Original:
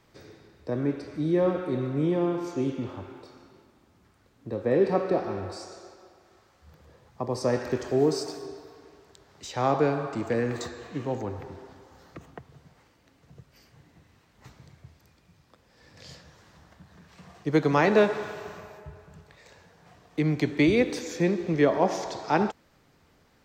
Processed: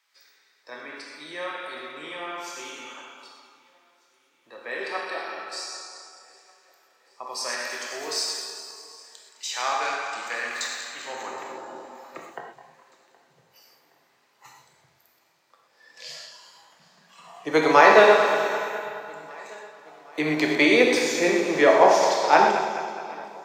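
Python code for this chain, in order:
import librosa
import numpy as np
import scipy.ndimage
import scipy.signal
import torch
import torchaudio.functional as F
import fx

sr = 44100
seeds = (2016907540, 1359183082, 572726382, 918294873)

y = fx.reverse_delay_fb(x, sr, ms=105, feedback_pct=75, wet_db=-9.0)
y = fx.noise_reduce_blind(y, sr, reduce_db=11)
y = fx.filter_sweep_highpass(y, sr, from_hz=1700.0, to_hz=580.0, start_s=10.99, end_s=11.76, q=0.79)
y = fx.echo_feedback(y, sr, ms=770, feedback_pct=50, wet_db=-23)
y = fx.rev_gated(y, sr, seeds[0], gate_ms=150, shape='flat', drr_db=1.5)
y = F.gain(torch.from_numpy(y), 7.5).numpy()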